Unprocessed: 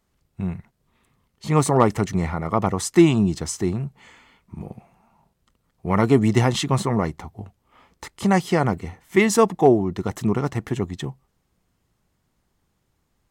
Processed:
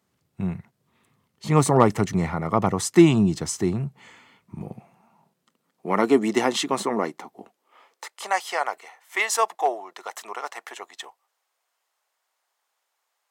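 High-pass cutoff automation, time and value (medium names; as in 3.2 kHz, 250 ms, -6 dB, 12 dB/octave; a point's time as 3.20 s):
high-pass 24 dB/octave
4.60 s 97 Hz
6.09 s 250 Hz
7.35 s 250 Hz
8.32 s 640 Hz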